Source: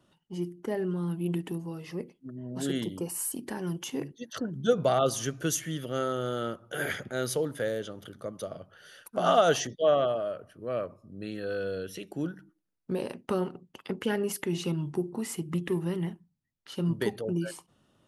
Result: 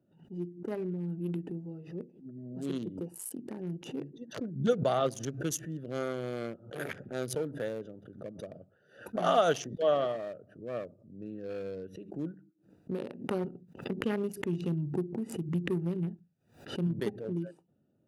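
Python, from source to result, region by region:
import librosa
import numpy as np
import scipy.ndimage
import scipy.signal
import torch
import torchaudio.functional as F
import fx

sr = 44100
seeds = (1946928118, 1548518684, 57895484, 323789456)

y = fx.chain(x, sr, fx.low_shelf(hz=110.0, db=10.5),
    fx.quant_dither(seeds[0], bits=12, dither='triangular'), at=(13.44, 16.87))
y = fx.wiener(y, sr, points=41)
y = scipy.signal.sosfilt(scipy.signal.butter(2, 110.0, 'highpass', fs=sr, output='sos'), y)
y = fx.pre_swell(y, sr, db_per_s=120.0)
y = y * 10.0 ** (-3.0 / 20.0)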